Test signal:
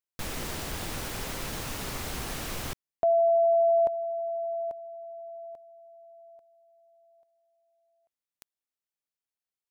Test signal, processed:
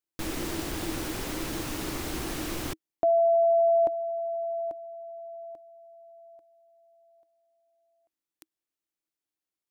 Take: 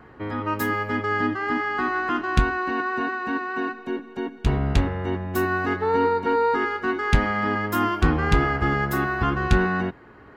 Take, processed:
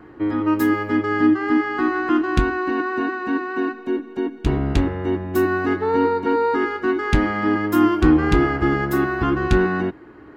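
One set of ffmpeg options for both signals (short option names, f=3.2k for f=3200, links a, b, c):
-af "equalizer=f=320:t=o:w=0.37:g=14"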